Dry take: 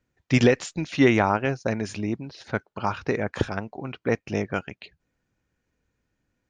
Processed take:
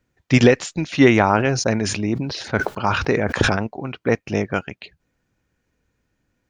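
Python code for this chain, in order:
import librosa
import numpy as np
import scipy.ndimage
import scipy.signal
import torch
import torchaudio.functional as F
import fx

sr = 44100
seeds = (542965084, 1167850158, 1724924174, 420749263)

y = fx.sustainer(x, sr, db_per_s=46.0, at=(1.29, 3.67))
y = F.gain(torch.from_numpy(y), 5.0).numpy()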